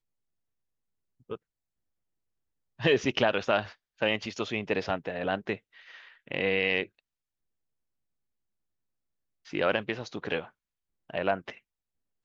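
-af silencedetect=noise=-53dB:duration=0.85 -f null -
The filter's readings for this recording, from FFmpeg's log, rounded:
silence_start: 0.00
silence_end: 1.20 | silence_duration: 1.20
silence_start: 1.37
silence_end: 2.79 | silence_duration: 1.42
silence_start: 6.99
silence_end: 9.45 | silence_duration: 2.46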